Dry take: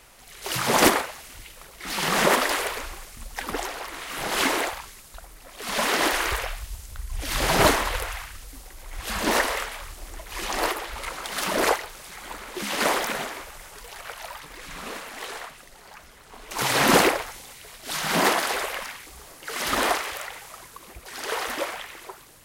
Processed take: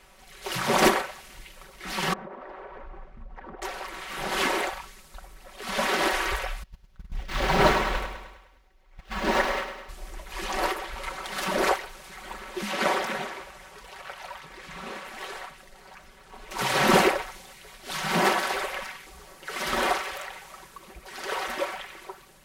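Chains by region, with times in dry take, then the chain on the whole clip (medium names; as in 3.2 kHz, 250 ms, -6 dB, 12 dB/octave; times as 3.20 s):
2.13–3.62 s: low-pass 1.1 kHz + compression 16:1, threshold -36 dBFS
6.63–9.89 s: median filter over 5 samples + gate -31 dBFS, range -18 dB + feedback delay 103 ms, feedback 55%, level -9.5 dB
12.71–15.05 s: high-pass 49 Hz + treble shelf 8.2 kHz -6 dB
whole clip: treble shelf 5.4 kHz -8 dB; comb 5.3 ms; trim -2.5 dB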